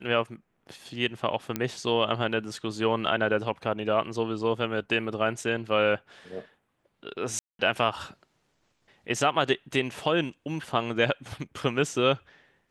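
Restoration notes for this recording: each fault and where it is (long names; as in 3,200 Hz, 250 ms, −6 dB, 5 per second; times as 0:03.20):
0:01.56: click −13 dBFS
0:07.39–0:07.59: drop-out 202 ms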